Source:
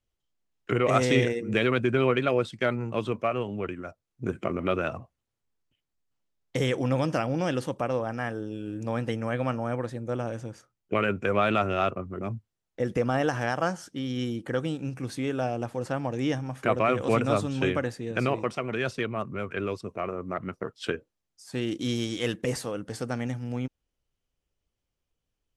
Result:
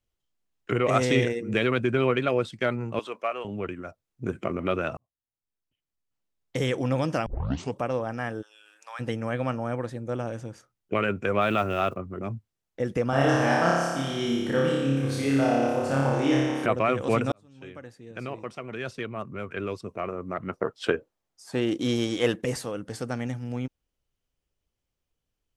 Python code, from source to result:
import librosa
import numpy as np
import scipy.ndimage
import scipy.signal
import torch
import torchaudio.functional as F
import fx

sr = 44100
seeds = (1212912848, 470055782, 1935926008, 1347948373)

y = fx.highpass(x, sr, hz=560.0, slope=12, at=(2.99, 3.45))
y = fx.highpass(y, sr, hz=960.0, slope=24, at=(8.41, 8.99), fade=0.02)
y = fx.block_float(y, sr, bits=7, at=(11.4, 11.95), fade=0.02)
y = fx.room_flutter(y, sr, wall_m=5.0, rt60_s=1.5, at=(13.1, 16.66))
y = fx.peak_eq(y, sr, hz=730.0, db=8.5, octaves=2.4, at=(20.49, 22.41))
y = fx.edit(y, sr, fx.fade_in_span(start_s=4.97, length_s=1.74),
    fx.tape_start(start_s=7.26, length_s=0.5),
    fx.fade_in_span(start_s=17.32, length_s=2.65), tone=tone)